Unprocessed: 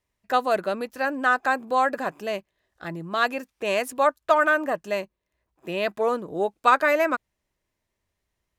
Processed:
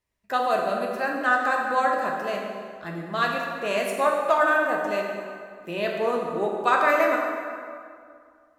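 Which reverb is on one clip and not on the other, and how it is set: plate-style reverb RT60 2.2 s, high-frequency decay 0.65×, DRR -1 dB; gain -3.5 dB

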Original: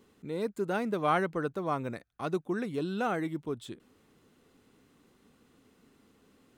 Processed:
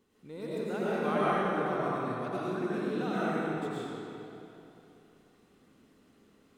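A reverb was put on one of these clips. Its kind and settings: digital reverb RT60 3 s, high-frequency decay 0.8×, pre-delay 65 ms, DRR -9 dB; gain -9 dB

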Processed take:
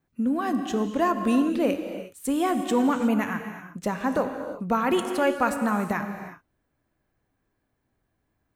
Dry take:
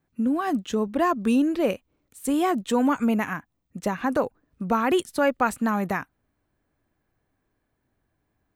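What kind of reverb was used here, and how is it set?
non-linear reverb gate 0.39 s flat, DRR 6.5 dB; gain -1.5 dB

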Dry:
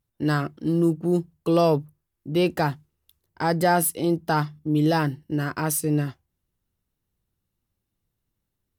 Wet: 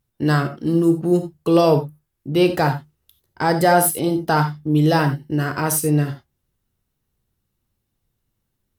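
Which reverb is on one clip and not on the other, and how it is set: non-linear reverb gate 0.11 s flat, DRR 7.5 dB; gain +4.5 dB

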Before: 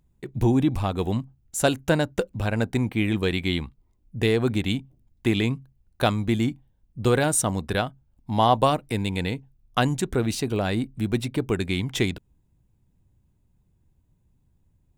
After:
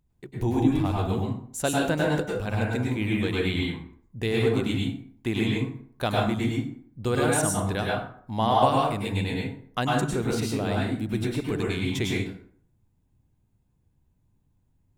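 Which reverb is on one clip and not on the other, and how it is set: plate-style reverb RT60 0.57 s, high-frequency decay 0.6×, pre-delay 90 ms, DRR -3.5 dB; gain -6 dB

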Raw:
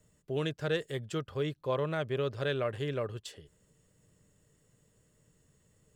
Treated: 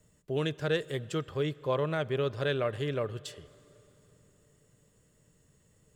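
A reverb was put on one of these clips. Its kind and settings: plate-style reverb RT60 3.8 s, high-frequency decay 0.8×, DRR 20 dB; gain +2 dB

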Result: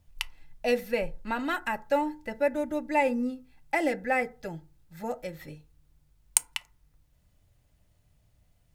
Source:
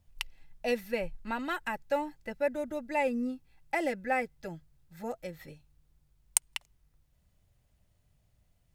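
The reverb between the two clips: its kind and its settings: FDN reverb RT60 0.35 s, low-frequency decay 1.1×, high-frequency decay 0.45×, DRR 12 dB; gain +3.5 dB

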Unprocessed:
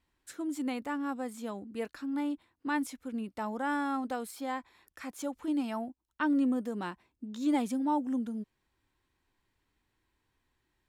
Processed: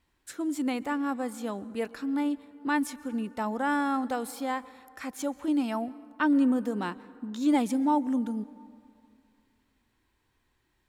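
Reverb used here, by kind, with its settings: plate-style reverb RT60 2.4 s, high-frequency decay 0.45×, pre-delay 0.11 s, DRR 19 dB; gain +4.5 dB

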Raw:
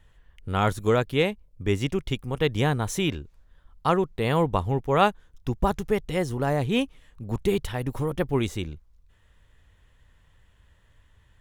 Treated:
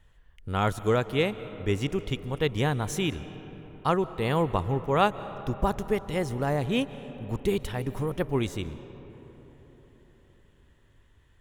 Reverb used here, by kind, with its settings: digital reverb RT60 4.5 s, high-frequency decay 0.4×, pre-delay 0.11 s, DRR 14 dB; gain -2.5 dB

